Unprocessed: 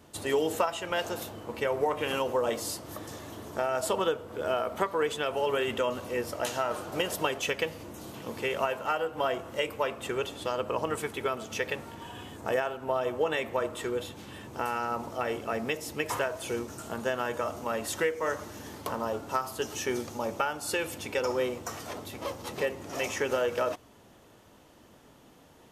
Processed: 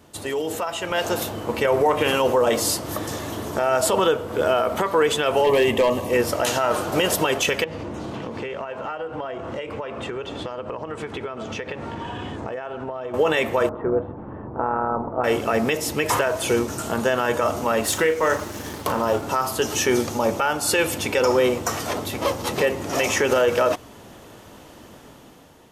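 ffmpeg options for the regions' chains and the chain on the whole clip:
-filter_complex "[0:a]asettb=1/sr,asplit=3[a][b][c];[a]atrim=end=5.444[d];[b]atrim=start=5.44:end=6.13,asetpts=PTS-STARTPTS,afade=t=in:d=0.004:c=qsin,afade=t=out:st=0.686:d=0.004:c=qsin,equalizer=f=4.7k:t=o:w=1.6:g=-5.5,volume=24.5dB,asoftclip=hard,volume=-24.5dB,asuperstop=centerf=1400:order=4:qfactor=3.1[e];[c]atrim=start=6.126[f];[d][e]acrossfade=d=0.004:c1=hsin:c2=qsin[g];[g][f]acrossfade=d=0.004:c1=qsin:c2=hsin,asettb=1/sr,asplit=3[h][i][j];[h]atrim=end=7.644[k];[i]atrim=start=7.64:end=13.14,asetpts=PTS-STARTPTS,afade=t=in:d=0.004:c=qsin,afade=t=out:st=5.496:d=0.004:c=qsin,aemphasis=mode=reproduction:type=75fm,acompressor=threshold=-39dB:ratio=10:attack=3.2:release=140:knee=1:detection=peak,lowpass=8.6k[l];[j]atrim=start=13.136[m];[k][l]acrossfade=d=0.004:c1=hsin:c2=qsin[n];[n][m]acrossfade=d=0.004:c1=qsin:c2=hsin,asettb=1/sr,asplit=3[o][p][q];[o]atrim=end=13.694[r];[p]atrim=start=13.69:end=15.24,asetpts=PTS-STARTPTS,afade=t=in:d=0.004:c=qsin,afade=t=out:st=1.546:d=0.004:c=qsin,lowpass=f=1.2k:w=0.5412,lowpass=f=1.2k:w=1.3066,tremolo=f=200:d=0.519[s];[q]atrim=start=15.236[t];[r][s]acrossfade=d=0.004:c1=hsin:c2=qsin[u];[u][t]acrossfade=d=0.004:c1=qsin:c2=hsin,asettb=1/sr,asplit=3[v][w][x];[v]atrim=end=17.814[y];[w]atrim=start=17.81:end=19.24,asetpts=PTS-STARTPTS,afade=t=in:d=0.004:c=qsin,afade=t=out:st=1.426:d=0.004:c=qsin,aeval=exprs='sgn(val(0))*max(abs(val(0))-0.00251,0)':c=same,asplit=2[z][aa];[aa]adelay=38,volume=-12dB[ab];[z][ab]amix=inputs=2:normalize=0,atrim=end_sample=63063[ac];[x]atrim=start=19.236[ad];[y][ac]acrossfade=d=0.004:c1=hsin:c2=qsin[ae];[ae][ad]acrossfade=d=0.004:c1=qsin:c2=hsin,alimiter=limit=-22.5dB:level=0:latency=1:release=29,dynaudnorm=f=380:g=5:m=8.5dB,volume=4dB"

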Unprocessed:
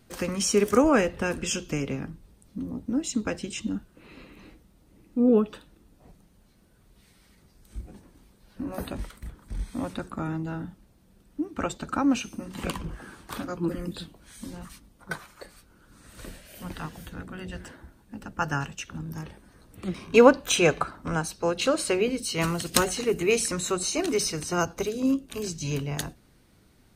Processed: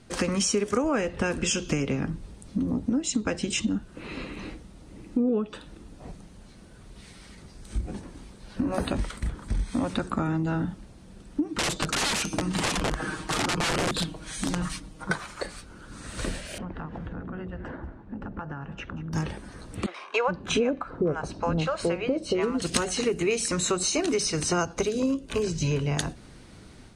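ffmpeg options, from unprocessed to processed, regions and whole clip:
-filter_complex "[0:a]asettb=1/sr,asplit=3[a][b][c];[a]atrim=end=11.454[d];[b]atrim=start=11.45:end=15.11,asetpts=PTS-STARTPTS,afade=t=in:d=0.004:c=qsin,afade=t=out:st=3.656:d=0.004:c=qsin,aecho=1:1:6.4:0.68,atrim=end_sample=161406,aeval=exprs='(mod(25.1*val(0)+1,2)-1)/25.1':c=same[e];[c]atrim=start=15.106[f];[d][e]acrossfade=d=0.004:c1=hsin:c2=qsin[g];[g][f]acrossfade=d=0.004:c1=qsin:c2=hsin,asettb=1/sr,asplit=3[h][i][j];[h]atrim=end=16.584[k];[i]atrim=start=16.58:end=19.13,asetpts=PTS-STARTPTS,afade=t=in:d=0.004:c=qsin,afade=t=out:st=2.546:d=0.004:c=qsin,lowpass=1.3k,acompressor=threshold=-43dB:ratio=16:attack=3.2:release=140:knee=1:detection=peak,aecho=1:1:185:0.15,atrim=end_sample=112455[l];[j]atrim=start=19.126[m];[k][l]acrossfade=d=0.004:c1=hsin:c2=qsin[n];[n][m]acrossfade=d=0.004:c1=qsin:c2=hsin,asettb=1/sr,asplit=3[o][p][q];[o]atrim=end=19.864[r];[p]atrim=start=19.86:end=22.62,asetpts=PTS-STARTPTS,afade=t=in:d=0.004:c=qsin,afade=t=out:st=2.756:d=0.004:c=qsin,lowpass=f=1.1k:p=1,acrossover=split=630[s][t];[s]adelay=420[u];[u][t]amix=inputs=2:normalize=0,atrim=end_sample=121716[v];[q]atrim=start=22.616[w];[r][v]acrossfade=d=0.004:c1=hsin:c2=qsin[x];[x][w]acrossfade=d=0.004:c1=qsin:c2=hsin,asettb=1/sr,asplit=3[y][z][aa];[y]atrim=end=24.994[ab];[z]atrim=start=24.99:end=25.86,asetpts=PTS-STARTPTS,afade=t=in:d=0.004:c=qsin,afade=t=out:st=0.866:d=0.004:c=qsin,acrossover=split=2800[ac][ad];[ad]acompressor=threshold=-44dB:ratio=4:attack=1:release=60[ae];[ac][ae]amix=inputs=2:normalize=0,aecho=1:1:2:0.31,atrim=end_sample=38367[af];[aa]atrim=start=25.856[ag];[ab][af]acrossfade=d=0.004:c1=hsin:c2=qsin[ah];[ah][ag]acrossfade=d=0.004:c1=qsin:c2=hsin,acompressor=threshold=-35dB:ratio=6,lowpass=f=9.4k:w=0.5412,lowpass=f=9.4k:w=1.3066,dynaudnorm=f=110:g=3:m=6dB,volume=5.5dB"

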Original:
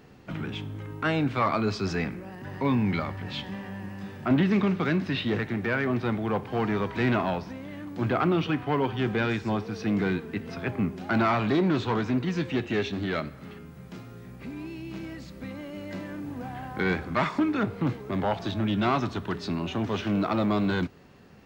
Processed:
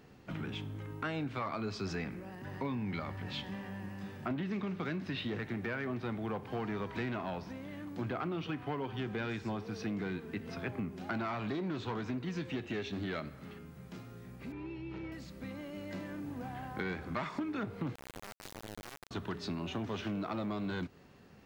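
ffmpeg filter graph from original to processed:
-filter_complex "[0:a]asettb=1/sr,asplit=3[a][b][c];[a]atrim=end=14.524[d];[b]atrim=start=14.52:end=15.12,asetpts=PTS-STARTPTS,afade=t=in:d=0.004:c=qsin,afade=t=out:st=0.596:d=0.004:c=qsin,lowpass=2.7k,aecho=1:1:2.2:0.69,atrim=end_sample=26460[e];[c]atrim=start=15.116[f];[d][e]acrossfade=d=0.004:c1=hsin:c2=qsin[g];[g][f]acrossfade=d=0.004:c1=qsin:c2=hsin,asettb=1/sr,asplit=3[h][i][j];[h]atrim=end=17.954[k];[i]atrim=start=17.95:end=19.11,asetpts=PTS-STARTPTS,afade=t=in:d=0.004:c=qsin,afade=t=out:st=1.156:d=0.004:c=qsin,acompressor=threshold=-36dB:ratio=16:attack=3.2:release=140:knee=1:detection=peak,acrusher=bits=3:dc=4:mix=0:aa=0.000001[l];[j]atrim=start=19.106[m];[k][l]acrossfade=d=0.004:c1=hsin:c2=qsin[n];[n][m]acrossfade=d=0.004:c1=qsin:c2=hsin,equalizer=f=13k:t=o:w=1.8:g=2,acompressor=threshold=-28dB:ratio=6,volume=-5.5dB"

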